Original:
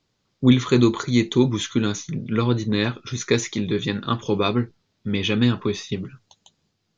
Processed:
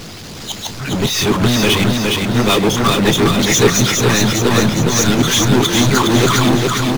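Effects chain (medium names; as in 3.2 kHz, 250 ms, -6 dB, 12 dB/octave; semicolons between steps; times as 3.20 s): reverse the whole clip; power-law waveshaper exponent 0.35; doubling 34 ms -13 dB; on a send: feedback delay 413 ms, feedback 55%, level -3 dB; on the sum: harmonic-percussive split percussive +7 dB; trim -7 dB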